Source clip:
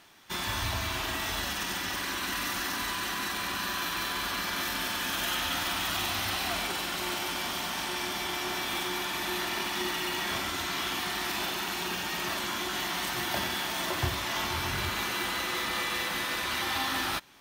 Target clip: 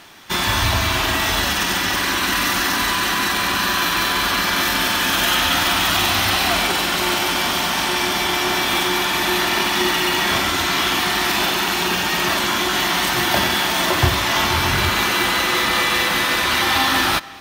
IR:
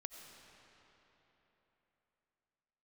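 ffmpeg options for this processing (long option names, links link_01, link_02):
-filter_complex "[0:a]acontrast=22,asplit=2[link_01][link_02];[1:a]atrim=start_sample=2205,lowpass=7200[link_03];[link_02][link_03]afir=irnorm=-1:irlink=0,volume=-9dB[link_04];[link_01][link_04]amix=inputs=2:normalize=0,volume=7dB"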